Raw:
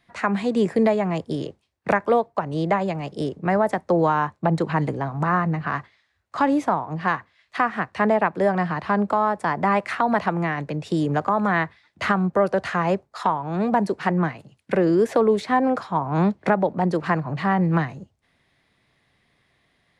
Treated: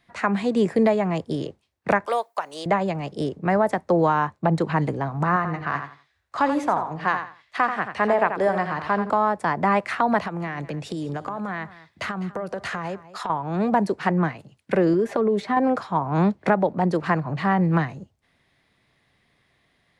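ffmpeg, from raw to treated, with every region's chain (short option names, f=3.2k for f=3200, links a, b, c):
-filter_complex "[0:a]asettb=1/sr,asplit=3[a][b][c];[a]atrim=end=2.064[d];[b]atrim=start=2.06:end=2.66,asetpts=PTS-STARTPTS,afade=t=in:d=0.004:c=qsin,afade=t=out:st=0.596:d=0.004:c=qsin,highpass=670,aemphasis=mode=production:type=75fm,deesser=0.7[e];[c]atrim=start=2.656[f];[d][e]acrossfade=d=0.004:c1=hsin:c2=qsin[g];[g][f]acrossfade=d=0.004:c1=qsin:c2=hsin,asettb=1/sr,asplit=3[h][i][j];[h]atrim=end=5.364[k];[i]atrim=start=5.36:end=9.1,asetpts=PTS-STARTPTS,afade=t=in:d=0.004:c=qsin,afade=t=out:st=3.736:d=0.004:c=qsin,equalizer=f=180:t=o:w=1.5:g=-6,aecho=1:1:85|170|255:0.376|0.0902|0.0216,atrim=end_sample=164934[l];[j]atrim=start=9.096[m];[k][l]acrossfade=d=0.004:c1=hsin:c2=qsin[n];[n][m]acrossfade=d=0.004:c1=qsin:c2=hsin,asettb=1/sr,asplit=3[o][p][q];[o]atrim=end=10.204[r];[p]atrim=start=10.2:end=13.3,asetpts=PTS-STARTPTS,afade=t=in:d=0.004:c=qsin,afade=t=out:st=3.096:d=0.004:c=qsin,highshelf=f=6k:g=4.5,acompressor=threshold=-25dB:ratio=10:attack=3.2:release=140:knee=1:detection=peak,aecho=1:1:202:0.141,atrim=end_sample=136710[s];[q]atrim=start=13.296[t];[r][s]acrossfade=d=0.004:c1=hsin:c2=qsin[u];[u][t]acrossfade=d=0.004:c1=qsin:c2=hsin,asettb=1/sr,asplit=3[v][w][x];[v]atrim=end=14.934[y];[w]atrim=start=14.93:end=15.57,asetpts=PTS-STARTPTS,afade=t=in:d=0.004:c=qsin,afade=t=out:st=0.636:d=0.004:c=qsin,highshelf=f=3.2k:g=-8,aecho=1:1:5:0.51,atrim=end_sample=28224,acompressor=threshold=-17dB:ratio=5:attack=3.2:release=140:knee=1:detection=peak[z];[x]atrim=start=15.566[aa];[y][z]acrossfade=d=0.004:c1=hsin:c2=qsin[ab];[ab][aa]acrossfade=d=0.004:c1=qsin:c2=hsin"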